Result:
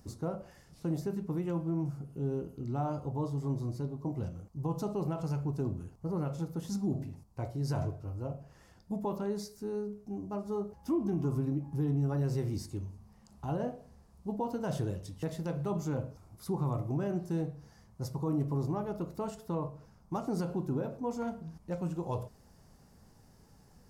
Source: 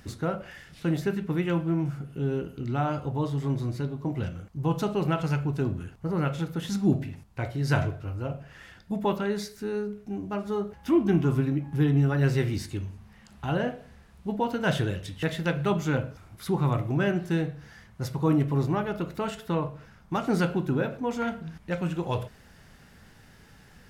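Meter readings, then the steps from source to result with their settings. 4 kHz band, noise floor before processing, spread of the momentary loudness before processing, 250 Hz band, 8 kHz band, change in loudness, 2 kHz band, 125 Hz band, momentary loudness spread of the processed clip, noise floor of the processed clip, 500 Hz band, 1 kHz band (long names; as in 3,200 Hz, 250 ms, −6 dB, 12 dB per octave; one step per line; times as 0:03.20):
−13.5 dB, −54 dBFS, 11 LU, −7.0 dB, −6.0 dB, −7.0 dB, −19.0 dB, −6.5 dB, 9 LU, −61 dBFS, −7.0 dB, −8.0 dB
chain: flat-topped bell 2,300 Hz −12.5 dB
brickwall limiter −18.5 dBFS, peak gain reduction 7 dB
level −5.5 dB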